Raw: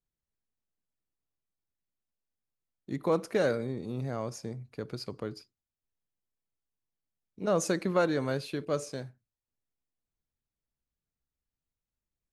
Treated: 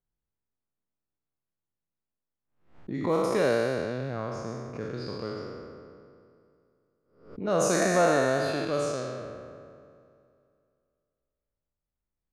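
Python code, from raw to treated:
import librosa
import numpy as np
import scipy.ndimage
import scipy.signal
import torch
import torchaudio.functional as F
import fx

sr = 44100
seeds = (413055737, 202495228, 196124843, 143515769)

y = fx.spec_trails(x, sr, decay_s=2.43)
y = fx.small_body(y, sr, hz=(680.0, 1800.0), ring_ms=45, db=12, at=(7.8, 8.65))
y = fx.env_lowpass(y, sr, base_hz=1500.0, full_db=-20.5)
y = fx.pre_swell(y, sr, db_per_s=110.0)
y = y * librosa.db_to_amplitude(-1.5)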